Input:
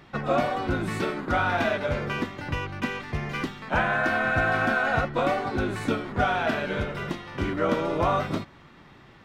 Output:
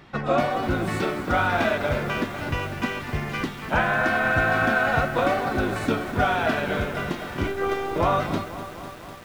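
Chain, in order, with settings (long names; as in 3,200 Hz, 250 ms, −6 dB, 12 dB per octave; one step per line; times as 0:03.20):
0:07.47–0:07.96: phases set to zero 392 Hz
feedback echo at a low word length 250 ms, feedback 80%, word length 7 bits, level −12 dB
level +2 dB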